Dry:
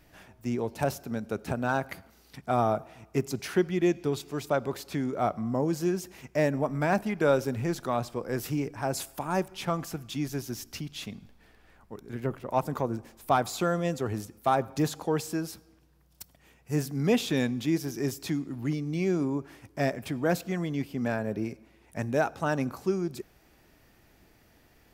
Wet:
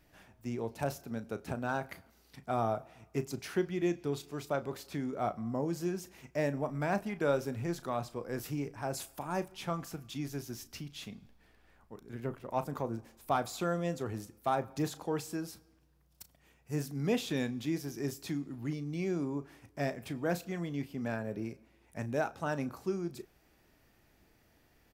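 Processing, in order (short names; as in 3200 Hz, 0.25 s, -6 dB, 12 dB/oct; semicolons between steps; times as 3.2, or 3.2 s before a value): doubler 35 ms -13 dB; gain -6.5 dB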